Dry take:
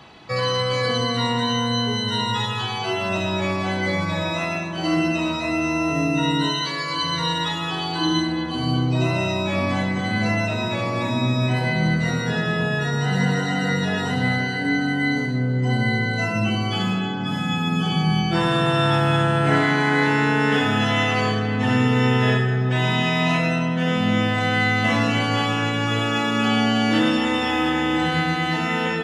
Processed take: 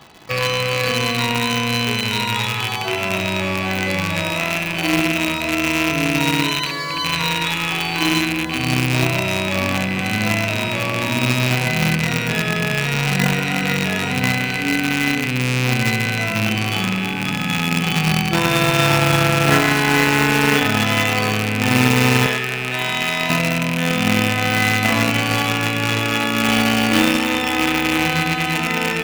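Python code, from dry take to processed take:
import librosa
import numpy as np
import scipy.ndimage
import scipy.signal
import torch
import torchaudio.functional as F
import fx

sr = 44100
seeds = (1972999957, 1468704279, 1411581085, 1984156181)

p1 = fx.rattle_buzz(x, sr, strikes_db=-32.0, level_db=-13.0)
p2 = fx.highpass(p1, sr, hz=530.0, slope=6, at=(22.26, 23.3))
p3 = fx.quant_companded(p2, sr, bits=2)
p4 = p2 + (p3 * librosa.db_to_amplitude(-9.0))
y = p4 * librosa.db_to_amplitude(-1.0)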